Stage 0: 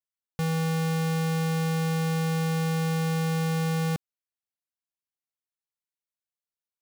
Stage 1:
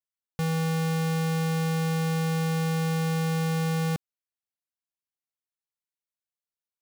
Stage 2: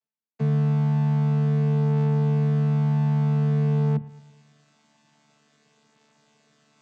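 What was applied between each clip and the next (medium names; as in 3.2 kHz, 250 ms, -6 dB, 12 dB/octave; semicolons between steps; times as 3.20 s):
no audible change
vocoder on a held chord bare fifth, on D3; reverse; upward compressor, threshold -36 dBFS; reverse; bucket-brigade echo 110 ms, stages 2048, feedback 55%, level -19 dB; trim +6 dB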